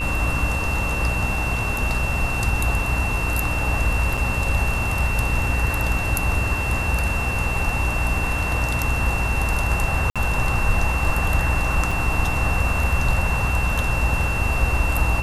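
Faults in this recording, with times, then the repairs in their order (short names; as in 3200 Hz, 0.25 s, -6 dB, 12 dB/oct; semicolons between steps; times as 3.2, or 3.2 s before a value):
buzz 60 Hz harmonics 28 -26 dBFS
tone 2700 Hz -26 dBFS
4.17–4.18 gap 5.7 ms
10.1–10.16 gap 56 ms
11.91 gap 3.7 ms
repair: de-hum 60 Hz, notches 28; notch 2700 Hz, Q 30; interpolate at 4.17, 5.7 ms; interpolate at 10.1, 56 ms; interpolate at 11.91, 3.7 ms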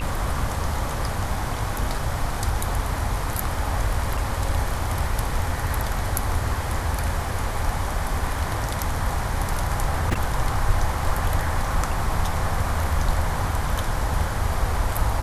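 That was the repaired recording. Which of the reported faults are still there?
none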